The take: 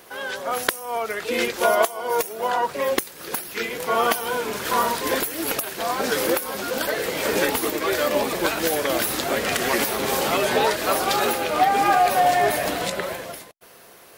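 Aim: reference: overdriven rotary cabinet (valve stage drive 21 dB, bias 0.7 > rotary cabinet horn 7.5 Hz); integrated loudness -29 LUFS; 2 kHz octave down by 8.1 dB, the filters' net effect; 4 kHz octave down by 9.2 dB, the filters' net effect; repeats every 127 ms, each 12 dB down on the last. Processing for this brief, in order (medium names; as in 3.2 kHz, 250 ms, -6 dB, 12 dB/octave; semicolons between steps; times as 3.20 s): peaking EQ 2 kHz -9 dB; peaking EQ 4 kHz -9 dB; feedback delay 127 ms, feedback 25%, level -12 dB; valve stage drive 21 dB, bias 0.7; rotary cabinet horn 7.5 Hz; trim +2.5 dB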